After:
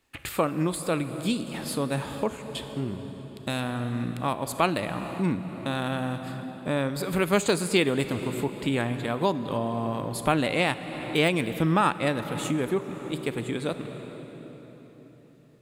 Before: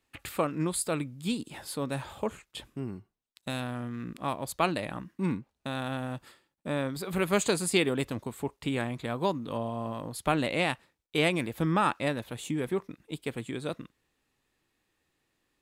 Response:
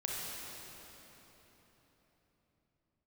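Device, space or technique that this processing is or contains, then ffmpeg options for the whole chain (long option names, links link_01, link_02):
ducked reverb: -filter_complex "[0:a]deesser=0.6,asplit=3[link_01][link_02][link_03];[1:a]atrim=start_sample=2205[link_04];[link_02][link_04]afir=irnorm=-1:irlink=0[link_05];[link_03]apad=whole_len=688458[link_06];[link_05][link_06]sidechaincompress=threshold=-32dB:ratio=8:attack=16:release=462,volume=-6dB[link_07];[link_01][link_07]amix=inputs=2:normalize=0,volume=2.5dB"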